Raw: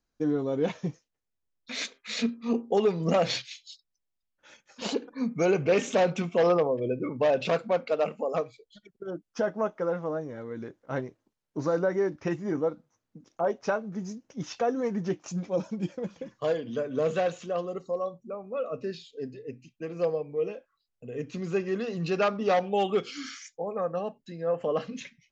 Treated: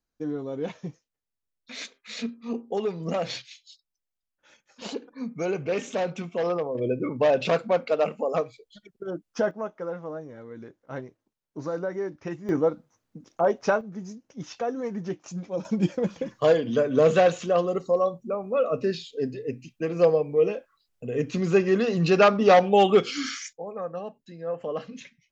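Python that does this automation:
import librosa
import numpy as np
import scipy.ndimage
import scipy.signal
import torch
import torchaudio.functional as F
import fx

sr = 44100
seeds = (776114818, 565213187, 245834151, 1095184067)

y = fx.gain(x, sr, db=fx.steps((0.0, -4.0), (6.75, 3.0), (9.51, -4.0), (12.49, 5.0), (13.81, -2.0), (15.65, 8.0), (23.53, -3.0)))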